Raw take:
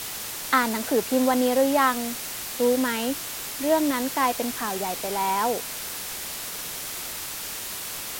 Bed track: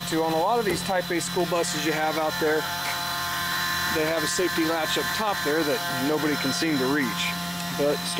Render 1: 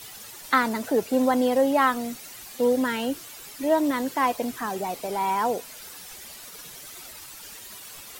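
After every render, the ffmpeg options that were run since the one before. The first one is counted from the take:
-af "afftdn=nr=12:nf=-34"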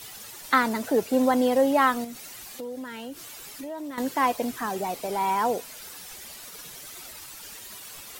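-filter_complex "[0:a]asettb=1/sr,asplit=3[s0][s1][s2];[s0]atrim=end=2.044[s3];[s1]atrim=start=2.04:end=3.98,asetpts=PTS-STARTPTS,afade=t=in:d=0.004:c=qsin,afade=t=out:st=1.936:d=0.004:c=qsin,acompressor=threshold=0.0178:ratio=4:attack=3.2:release=140:knee=1:detection=peak[s4];[s2]atrim=start=3.976[s5];[s3][s4]acrossfade=d=0.004:c1=hsin:c2=qsin[s6];[s6][s5]acrossfade=d=0.004:c1=qsin:c2=hsin"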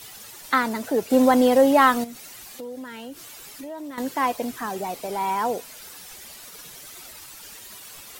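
-filter_complex "[0:a]asettb=1/sr,asplit=3[s0][s1][s2];[s0]atrim=end=1.104[s3];[s1]atrim=start=1.1:end=2.04,asetpts=PTS-STARTPTS,afade=t=in:d=0.004:c=qsin,afade=t=out:st=0.936:d=0.004:c=qsin,acontrast=28[s4];[s2]atrim=start=2.036[s5];[s3][s4]acrossfade=d=0.004:c1=hsin:c2=qsin[s6];[s6][s5]acrossfade=d=0.004:c1=qsin:c2=hsin"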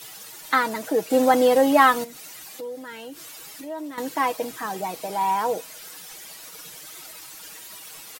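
-af "lowshelf=f=99:g=-11.5,aecho=1:1:6.3:0.51"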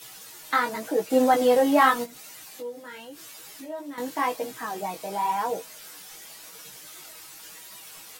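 -af "flanger=delay=15:depth=6.2:speed=0.9"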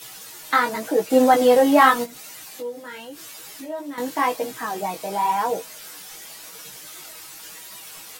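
-af "volume=1.68"

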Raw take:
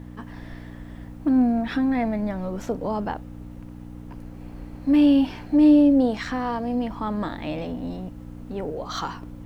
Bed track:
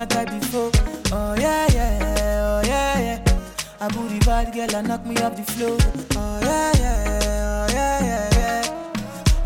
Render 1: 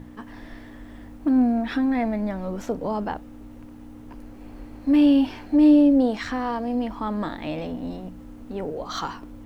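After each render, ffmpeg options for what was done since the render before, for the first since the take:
-af "bandreject=f=60:t=h:w=4,bandreject=f=120:t=h:w=4,bandreject=f=180:t=h:w=4"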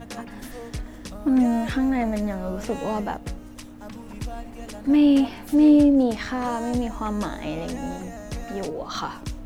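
-filter_complex "[1:a]volume=0.15[s0];[0:a][s0]amix=inputs=2:normalize=0"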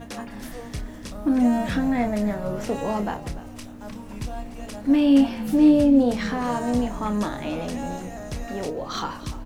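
-filter_complex "[0:a]asplit=2[s0][s1];[s1]adelay=29,volume=0.398[s2];[s0][s2]amix=inputs=2:normalize=0,asplit=4[s3][s4][s5][s6];[s4]adelay=293,afreqshift=-59,volume=0.168[s7];[s5]adelay=586,afreqshift=-118,volume=0.0624[s8];[s6]adelay=879,afreqshift=-177,volume=0.0229[s9];[s3][s7][s8][s9]amix=inputs=4:normalize=0"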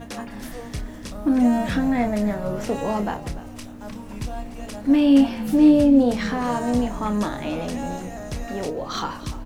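-af "volume=1.19"

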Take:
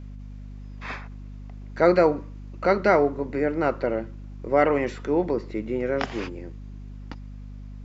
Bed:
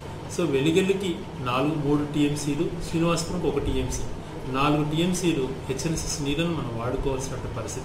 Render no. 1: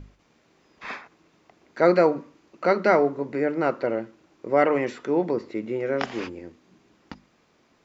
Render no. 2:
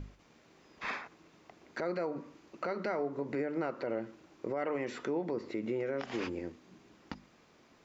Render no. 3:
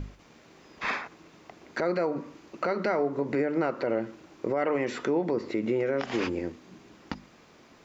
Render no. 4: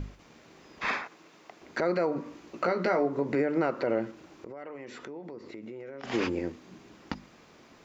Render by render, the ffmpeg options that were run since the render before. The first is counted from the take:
-af "bandreject=f=50:t=h:w=6,bandreject=f=100:t=h:w=6,bandreject=f=150:t=h:w=6,bandreject=f=200:t=h:w=6,bandreject=f=250:t=h:w=6"
-af "acompressor=threshold=0.0447:ratio=5,alimiter=level_in=1.19:limit=0.0631:level=0:latency=1:release=111,volume=0.841"
-af "volume=2.37"
-filter_complex "[0:a]asettb=1/sr,asplit=3[s0][s1][s2];[s0]atrim=end=1.044[s3];[s1]atrim=start=1.04:end=1.62,asetpts=PTS-STARTPTS,afade=t=in:d=0.004:c=qsin,afade=t=out:st=0.576:d=0.004:c=qsin,highpass=f=380:p=1[s4];[s2]atrim=start=1.616[s5];[s3][s4]acrossfade=d=0.004:c1=hsin:c2=qsin[s6];[s6][s5]acrossfade=d=0.004:c1=qsin:c2=hsin,asettb=1/sr,asplit=3[s7][s8][s9];[s7]atrim=end=2.244[s10];[s8]atrim=start=2.24:end=3.06,asetpts=PTS-STARTPTS,afade=t=in:d=0.004:c=qsin,afade=t=out:st=0.816:d=0.004:c=qsin,asplit=2[s11][s12];[s12]adelay=17,volume=0.473[s13];[s11][s13]amix=inputs=2:normalize=0,atrim=end_sample=36162[s14];[s9]atrim=start=3.056[s15];[s10][s14]acrossfade=d=0.004:c1=hsin:c2=qsin[s16];[s16][s15]acrossfade=d=0.004:c1=qsin:c2=hsin,asplit=3[s17][s18][s19];[s17]afade=t=out:st=4.11:d=0.02[s20];[s18]acompressor=threshold=0.00631:ratio=3:attack=3.2:release=140:knee=1:detection=peak,afade=t=in:st=4.11:d=0.02,afade=t=out:st=6.03:d=0.02[s21];[s19]afade=t=in:st=6.03:d=0.02[s22];[s20][s21][s22]amix=inputs=3:normalize=0"

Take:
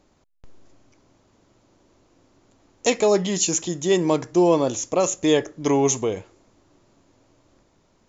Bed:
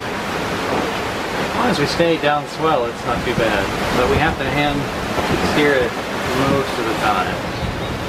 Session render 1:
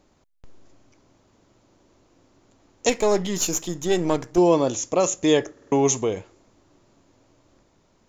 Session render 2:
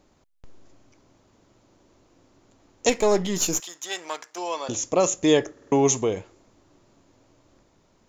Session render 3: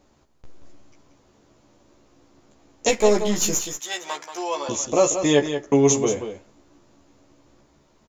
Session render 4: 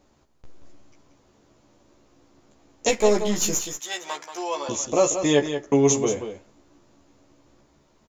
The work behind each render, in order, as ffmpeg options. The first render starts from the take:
-filter_complex "[0:a]asettb=1/sr,asplit=3[s0][s1][s2];[s0]atrim=end=2.894[s3];[s1]atrim=start=2.89:end=4.38,asetpts=PTS-STARTPTS,afade=t=in:d=0.004:c=qsin,afade=t=out:st=1.486:d=0.004:c=qsin,aeval=exprs='if(lt(val(0),0),0.447*val(0),val(0))':c=same[s4];[s2]atrim=start=4.376[s5];[s3][s4]acrossfade=d=0.004:c1=hsin:c2=qsin[s6];[s6][s5]acrossfade=d=0.004:c1=qsin:c2=hsin,asplit=5[s7][s8][s9][s10][s11];[s7]atrim=end=5.572[s12];[s8]atrim=start=5.518:end=5.572[s13];[s9]atrim=start=5.518:end=5.572[s14];[s10]atrim=start=5.518:end=5.572[s15];[s11]atrim=start=5.718[s16];[s12][s13]acrossfade=d=0.004:c1=hsin:c2=hsin[s17];[s17][s14]acrossfade=d=0.004:c1=hsin:c2=hsin[s18];[s18][s15]acrossfade=d=0.004:c1=hsin:c2=hsin[s19];[s19][s16]acrossfade=d=0.004:c1=hsin:c2=hsin"
-filter_complex "[0:a]asettb=1/sr,asplit=3[s0][s1][s2];[s0]atrim=end=3.604[s3];[s1]atrim=start=3.6:end=4.69,asetpts=PTS-STARTPTS,afade=t=in:d=0.004:c=qsin,afade=t=out:st=1.086:d=0.004:c=qsin,highpass=1100[s4];[s2]atrim=start=4.686[s5];[s3][s4]acrossfade=d=0.004:c1=hsin:c2=qsin[s6];[s6][s5]acrossfade=d=0.004:c1=qsin:c2=hsin"
-filter_complex "[0:a]asplit=2[s0][s1];[s1]adelay=14,volume=0.708[s2];[s0][s2]amix=inputs=2:normalize=0,asplit=2[s3][s4];[s4]aecho=0:1:181:0.355[s5];[s3][s5]amix=inputs=2:normalize=0"
-af "volume=0.841"

